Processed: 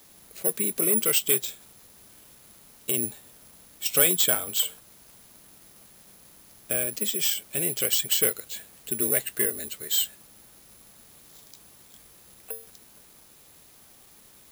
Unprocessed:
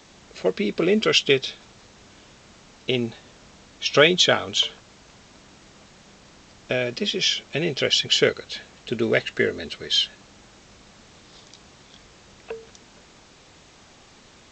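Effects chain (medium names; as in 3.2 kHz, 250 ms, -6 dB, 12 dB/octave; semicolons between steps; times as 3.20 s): careless resampling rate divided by 4×, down none, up zero stuff; in parallel at -8 dB: wavefolder -4.5 dBFS; on the sum: trim -11.5 dB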